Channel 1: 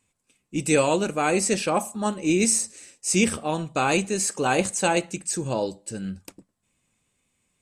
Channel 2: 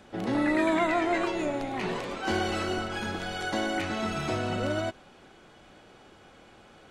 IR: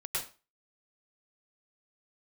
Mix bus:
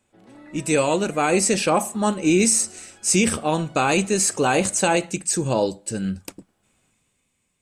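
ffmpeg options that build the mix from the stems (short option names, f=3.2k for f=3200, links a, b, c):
-filter_complex "[0:a]dynaudnorm=f=260:g=9:m=11.5dB,volume=-1dB[a];[1:a]volume=-19.5dB[b];[a][b]amix=inputs=2:normalize=0,alimiter=limit=-8dB:level=0:latency=1:release=42"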